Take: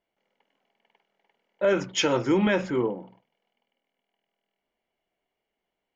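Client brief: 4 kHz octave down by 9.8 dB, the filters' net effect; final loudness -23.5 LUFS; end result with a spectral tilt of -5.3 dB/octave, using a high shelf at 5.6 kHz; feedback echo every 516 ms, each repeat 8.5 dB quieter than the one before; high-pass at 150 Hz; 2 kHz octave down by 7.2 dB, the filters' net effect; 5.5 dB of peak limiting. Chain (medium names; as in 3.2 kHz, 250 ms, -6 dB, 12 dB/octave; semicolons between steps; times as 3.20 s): high-pass 150 Hz; peaking EQ 2 kHz -7 dB; peaking EQ 4 kHz -7.5 dB; treble shelf 5.6 kHz -9 dB; peak limiter -19 dBFS; feedback delay 516 ms, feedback 38%, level -8.5 dB; trim +6.5 dB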